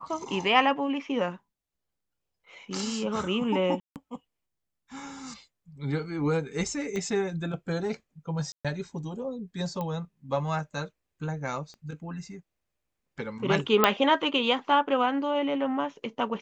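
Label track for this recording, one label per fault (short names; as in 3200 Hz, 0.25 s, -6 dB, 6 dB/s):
3.800000	3.960000	gap 0.158 s
6.960000	6.960000	pop -22 dBFS
8.520000	8.650000	gap 0.126 s
9.810000	9.810000	pop -21 dBFS
11.740000	11.740000	pop -35 dBFS
13.840000	13.840000	pop -4 dBFS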